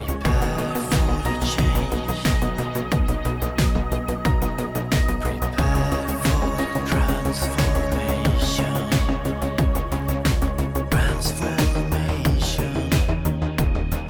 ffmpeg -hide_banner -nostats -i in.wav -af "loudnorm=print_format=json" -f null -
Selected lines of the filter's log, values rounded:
"input_i" : "-22.5",
"input_tp" : "-9.7",
"input_lra" : "0.6",
"input_thresh" : "-32.5",